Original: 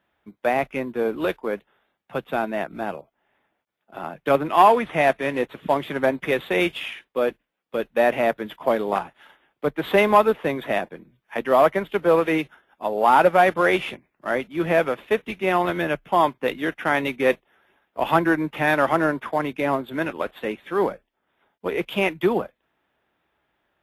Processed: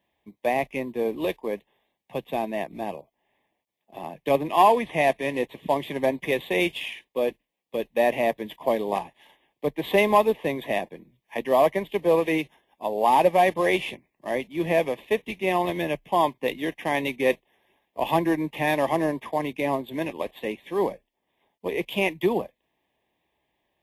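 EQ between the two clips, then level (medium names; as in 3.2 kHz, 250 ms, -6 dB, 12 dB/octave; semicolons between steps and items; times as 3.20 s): Butterworth band-stop 1.4 kHz, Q 2; treble shelf 4.5 kHz +5 dB; -2.5 dB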